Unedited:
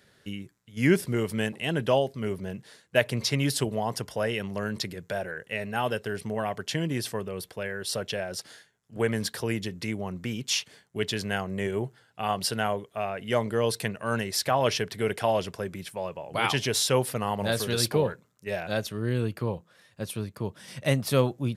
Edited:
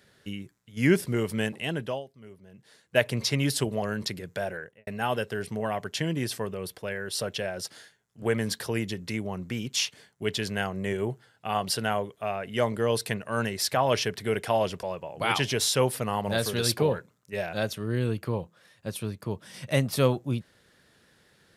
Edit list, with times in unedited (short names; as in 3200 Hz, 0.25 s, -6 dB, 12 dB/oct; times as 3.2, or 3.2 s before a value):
1.58–2.98 dip -17.5 dB, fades 0.47 s
3.82–4.56 cut
5.27–5.61 studio fade out
15.57–15.97 cut